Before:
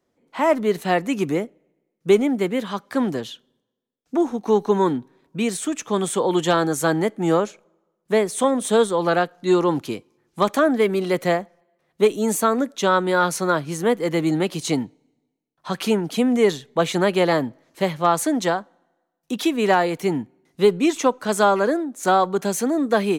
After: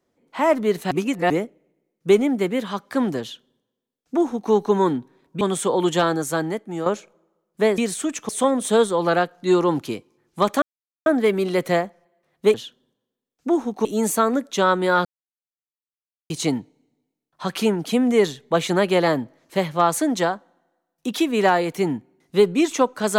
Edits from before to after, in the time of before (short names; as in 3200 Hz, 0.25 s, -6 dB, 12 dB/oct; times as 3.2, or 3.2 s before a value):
0.91–1.3 reverse
3.21–4.52 copy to 12.1
5.41–5.92 move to 8.29
6.42–7.37 fade out, to -10 dB
10.62 insert silence 0.44 s
13.3–14.55 mute